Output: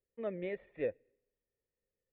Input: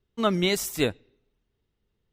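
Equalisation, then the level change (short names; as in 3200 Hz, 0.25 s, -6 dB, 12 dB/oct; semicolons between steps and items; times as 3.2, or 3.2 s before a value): dynamic EQ 1600 Hz, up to -3 dB, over -41 dBFS, Q 0.73; vocal tract filter e; 0.0 dB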